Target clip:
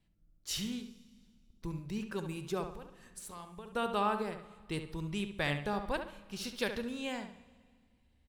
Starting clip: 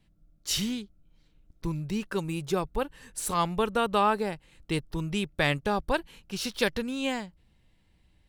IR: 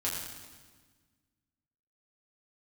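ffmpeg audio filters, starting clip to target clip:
-filter_complex "[0:a]asettb=1/sr,asplit=3[s0][s1][s2];[s0]atrim=end=2.684[s3];[s1]atrim=start=2.68:end=3.73,asetpts=PTS-STARTPTS,afade=t=in:d=0.004:c=qsin,afade=t=out:st=1.046:d=0.004:c=qsin,acompressor=threshold=0.0158:ratio=16[s4];[s2]atrim=start=3.726[s5];[s3][s4]acrossfade=d=0.004:c1=hsin:c2=qsin[s6];[s6][s5]acrossfade=d=0.004:c1=qsin:c2=hsin,asplit=2[s7][s8];[s8]adelay=69,lowpass=f=2900:p=1,volume=0.422,asplit=2[s9][s10];[s10]adelay=69,lowpass=f=2900:p=1,volume=0.35,asplit=2[s11][s12];[s12]adelay=69,lowpass=f=2900:p=1,volume=0.35,asplit=2[s13][s14];[s14]adelay=69,lowpass=f=2900:p=1,volume=0.35[s15];[s7][s9][s11][s13][s15]amix=inputs=5:normalize=0,asplit=2[s16][s17];[1:a]atrim=start_sample=2205,asetrate=34398,aresample=44100[s18];[s17][s18]afir=irnorm=-1:irlink=0,volume=0.0944[s19];[s16][s19]amix=inputs=2:normalize=0,volume=0.355"

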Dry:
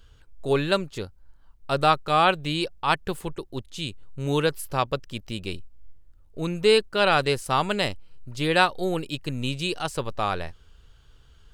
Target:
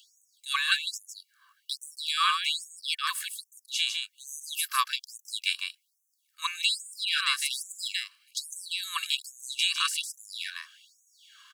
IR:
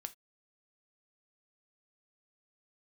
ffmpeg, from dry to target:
-filter_complex "[0:a]acrossover=split=890|3500[s0][s1][s2];[s0]acompressor=threshold=0.02:ratio=4[s3];[s1]acompressor=threshold=0.0141:ratio=4[s4];[s2]acompressor=threshold=0.0112:ratio=4[s5];[s3][s4][s5]amix=inputs=3:normalize=0,aecho=1:1:1.8:0.64,asplit=2[s6][s7];[s7]aecho=0:1:154:0.562[s8];[s6][s8]amix=inputs=2:normalize=0,afftfilt=real='re*gte(b*sr/1024,960*pow(5900/960,0.5+0.5*sin(2*PI*1.2*pts/sr)))':imag='im*gte(b*sr/1024,960*pow(5900/960,0.5+0.5*sin(2*PI*1.2*pts/sr)))':win_size=1024:overlap=0.75,volume=2.66"

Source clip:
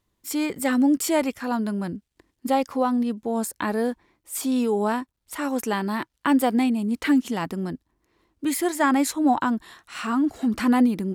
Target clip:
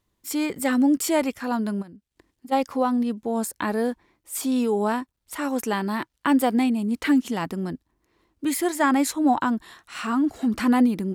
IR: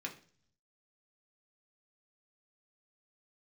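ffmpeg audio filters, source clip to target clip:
-filter_complex "[0:a]asplit=3[s0][s1][s2];[s0]afade=t=out:st=1.81:d=0.02[s3];[s1]acompressor=threshold=0.00794:ratio=6,afade=t=in:st=1.81:d=0.02,afade=t=out:st=2.51:d=0.02[s4];[s2]afade=t=in:st=2.51:d=0.02[s5];[s3][s4][s5]amix=inputs=3:normalize=0"

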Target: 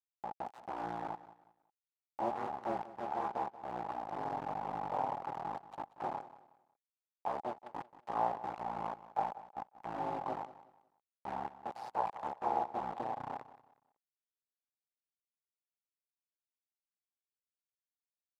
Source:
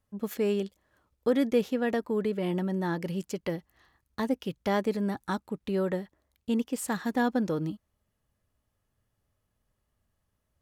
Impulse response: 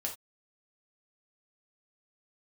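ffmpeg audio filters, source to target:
-af "aecho=1:1:5.7:0.67,asetrate=25442,aresample=44100,aeval=exprs='val(0)*sin(2*PI*60*n/s)':c=same,acrusher=bits=3:dc=4:mix=0:aa=0.000001,bandpass=f=820:t=q:w=7.8:csg=0,aecho=1:1:183|366|549:0.158|0.0475|0.0143,volume=4.73"

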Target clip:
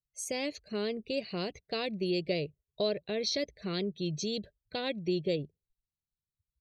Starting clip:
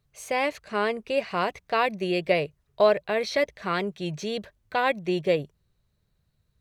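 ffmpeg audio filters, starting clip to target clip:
-af "afftdn=nr=27:nf=-47,firequalizer=gain_entry='entry(340,0);entry(930,-19);entry(4100,5)':delay=0.05:min_phase=1,acompressor=threshold=0.0224:ratio=1.5"

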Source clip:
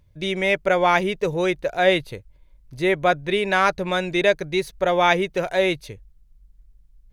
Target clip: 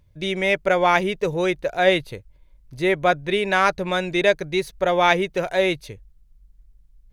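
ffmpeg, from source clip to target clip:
-af "aeval=exprs='0.708*(cos(1*acos(clip(val(0)/0.708,-1,1)))-cos(1*PI/2))+0.0398*(cos(3*acos(clip(val(0)/0.708,-1,1)))-cos(3*PI/2))':c=same,volume=1.19"

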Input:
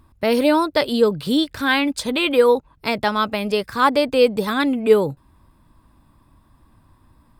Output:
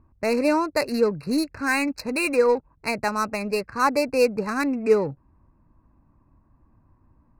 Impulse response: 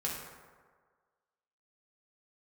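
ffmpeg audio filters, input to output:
-af "equalizer=f=3100:w=2.9:g=7.5,adynamicsmooth=sensitivity=2:basefreq=1300,asuperstop=centerf=3300:order=20:qfactor=2.7,volume=0.596"

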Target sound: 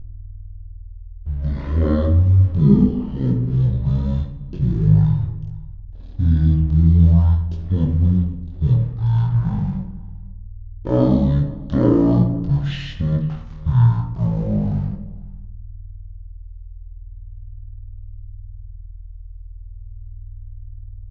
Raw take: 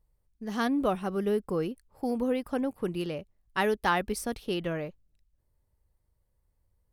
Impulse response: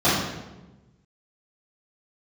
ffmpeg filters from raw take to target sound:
-filter_complex "[0:a]equalizer=f=360:t=o:w=2.1:g=11,asplit=2[s0][s1];[s1]acompressor=threshold=0.0251:ratio=6,volume=1.19[s2];[s0][s2]amix=inputs=2:normalize=0,aeval=exprs='sgn(val(0))*max(abs(val(0))-0.00562,0)':c=same,aeval=exprs='val(0)+0.0282*(sin(2*PI*60*n/s)+sin(2*PI*2*60*n/s)/2+sin(2*PI*3*60*n/s)/3+sin(2*PI*4*60*n/s)/4+sin(2*PI*5*60*n/s)/5)':c=same,asetrate=14465,aresample=44100,flanger=delay=20:depth=5.5:speed=0.39,asplit=2[s3][s4];[s4]adelay=501.5,volume=0.0794,highshelf=f=4000:g=-11.3[s5];[s3][s5]amix=inputs=2:normalize=0,asplit=2[s6][s7];[1:a]atrim=start_sample=2205,asetrate=70560,aresample=44100,adelay=30[s8];[s7][s8]afir=irnorm=-1:irlink=0,volume=0.0708[s9];[s6][s9]amix=inputs=2:normalize=0,volume=1.58"

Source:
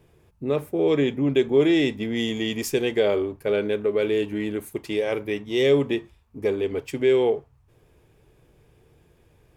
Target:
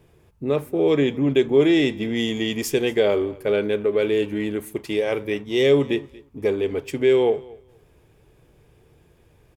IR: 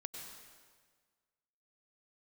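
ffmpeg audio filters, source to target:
-af "aecho=1:1:232|464:0.075|0.0127,volume=1.26"

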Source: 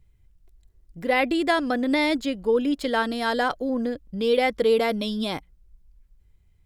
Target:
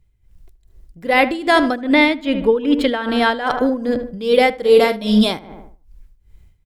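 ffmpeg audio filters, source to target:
-filter_complex "[0:a]asettb=1/sr,asplit=3[s0][s1][s2];[s0]atrim=end=1.814[s3];[s1]atrim=start=1.81:end=3.47,asetpts=PTS-STARTPTS,afade=t=in:d=0.004:c=qsin,afade=t=out:st=1.656:d=0.004:c=qsin,highshelf=f=4100:t=q:w=1.5:g=-8[s4];[s2]atrim=start=3.466[s5];[s3][s4]acrossfade=d=0.004:c1=hsin:c2=qsin[s6];[s6][s5]acrossfade=d=0.004:c1=qsin:c2=hsin,asettb=1/sr,asplit=3[s7][s8][s9];[s7]atrim=end=4.584[s10];[s8]atrim=start=4.58:end=5.32,asetpts=PTS-STARTPTS,afade=t=in:d=0.004:c=qsin,afade=t=out:st=0.736:d=0.004:c=qsin,asplit=2[s11][s12];[s12]adelay=47,volume=0.447[s13];[s11][s13]amix=inputs=2:normalize=0,atrim=end_sample=32634[s14];[s9]atrim=start=5.316[s15];[s10][s14]acrossfade=d=0.004:c1=hsin:c2=qsin[s16];[s16][s15]acrossfade=d=0.004:c1=qsin:c2=hsin,asplit=2[s17][s18];[s18]adelay=76,lowpass=f=2000:p=1,volume=0.282,asplit=2[s19][s20];[s20]adelay=76,lowpass=f=2000:p=1,volume=0.55,asplit=2[s21][s22];[s22]adelay=76,lowpass=f=2000:p=1,volume=0.55,asplit=2[s23][s24];[s24]adelay=76,lowpass=f=2000:p=1,volume=0.55,asplit=2[s25][s26];[s26]adelay=76,lowpass=f=2000:p=1,volume=0.55,asplit=2[s27][s28];[s28]adelay=76,lowpass=f=2000:p=1,volume=0.55[s29];[s19][s21][s23][s25][s27][s29]amix=inputs=6:normalize=0[s30];[s17][s30]amix=inputs=2:normalize=0,tremolo=f=2.5:d=0.82,dynaudnorm=f=110:g=3:m=4.47"

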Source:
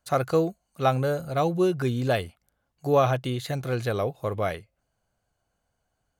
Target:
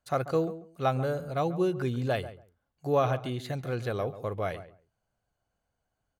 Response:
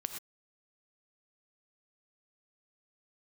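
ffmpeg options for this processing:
-filter_complex "[0:a]highshelf=f=5500:g=-5.5,asplit=2[s0][s1];[s1]adelay=139,lowpass=f=1300:p=1,volume=0.224,asplit=2[s2][s3];[s3]adelay=139,lowpass=f=1300:p=1,volume=0.18[s4];[s0][s2][s4]amix=inputs=3:normalize=0,volume=0.596"

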